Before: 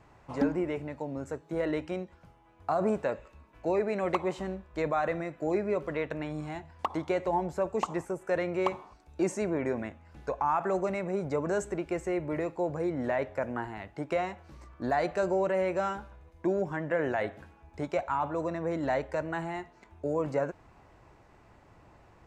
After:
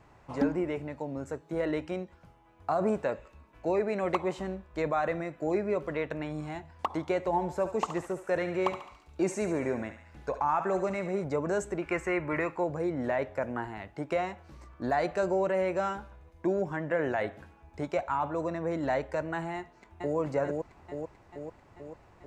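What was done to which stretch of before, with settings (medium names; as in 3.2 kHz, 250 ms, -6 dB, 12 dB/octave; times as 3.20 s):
7.27–11.24 s: thinning echo 71 ms, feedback 62%, high-pass 1 kHz, level -8 dB
11.82–12.64 s: high-order bell 1.6 kHz +10 dB
19.56–20.17 s: echo throw 440 ms, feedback 65%, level -2.5 dB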